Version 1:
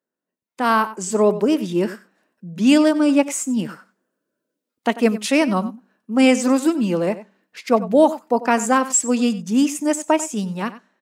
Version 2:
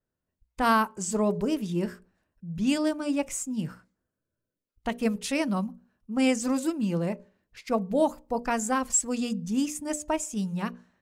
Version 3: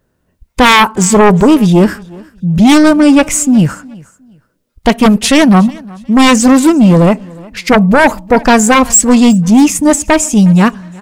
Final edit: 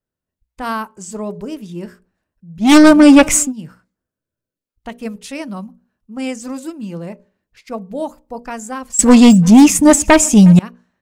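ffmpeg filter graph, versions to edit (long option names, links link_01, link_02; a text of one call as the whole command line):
ffmpeg -i take0.wav -i take1.wav -i take2.wav -filter_complex "[2:a]asplit=2[link_01][link_02];[1:a]asplit=3[link_03][link_04][link_05];[link_03]atrim=end=2.76[link_06];[link_01]atrim=start=2.6:end=3.53[link_07];[link_04]atrim=start=3.37:end=8.992[link_08];[link_02]atrim=start=8.988:end=10.592[link_09];[link_05]atrim=start=10.588[link_10];[link_06][link_07]acrossfade=duration=0.16:curve1=tri:curve2=tri[link_11];[link_11][link_08]acrossfade=duration=0.16:curve1=tri:curve2=tri[link_12];[link_12][link_09]acrossfade=duration=0.004:curve1=hsin:curve2=hsin[link_13];[link_13][link_10]acrossfade=duration=0.004:curve1=hsin:curve2=hsin" out.wav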